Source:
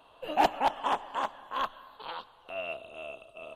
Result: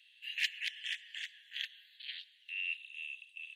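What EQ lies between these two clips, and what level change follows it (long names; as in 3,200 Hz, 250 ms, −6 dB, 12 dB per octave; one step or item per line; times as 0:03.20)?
Butterworth high-pass 1,800 Hz 96 dB per octave
high-shelf EQ 3,800 Hz −5 dB
high-shelf EQ 9,700 Hz −8.5 dB
+5.5 dB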